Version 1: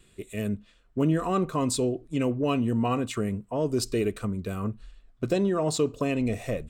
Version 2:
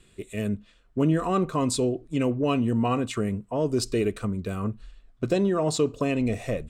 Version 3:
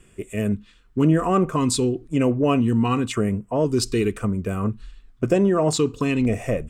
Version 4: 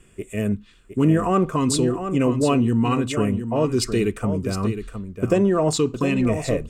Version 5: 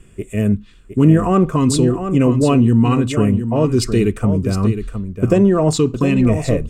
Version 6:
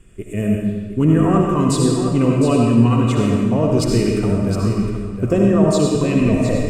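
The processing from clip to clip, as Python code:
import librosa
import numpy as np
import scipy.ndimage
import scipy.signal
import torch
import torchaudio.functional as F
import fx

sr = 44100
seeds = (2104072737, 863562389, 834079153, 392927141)

y1 = scipy.signal.sosfilt(scipy.signal.bessel(2, 11000.0, 'lowpass', norm='mag', fs=sr, output='sos'), x)
y1 = y1 * 10.0 ** (1.5 / 20.0)
y2 = fx.filter_lfo_notch(y1, sr, shape='square', hz=0.96, low_hz=610.0, high_hz=4000.0, q=1.4)
y2 = y2 * 10.0 ** (5.0 / 20.0)
y3 = y2 + 10.0 ** (-9.0 / 20.0) * np.pad(y2, (int(712 * sr / 1000.0), 0))[:len(y2)]
y4 = fx.low_shelf(y3, sr, hz=260.0, db=8.0)
y4 = y4 * 10.0 ** (2.0 / 20.0)
y5 = fx.rev_freeverb(y4, sr, rt60_s=1.4, hf_ratio=0.95, predelay_ms=35, drr_db=-1.0)
y5 = y5 * 10.0 ** (-4.0 / 20.0)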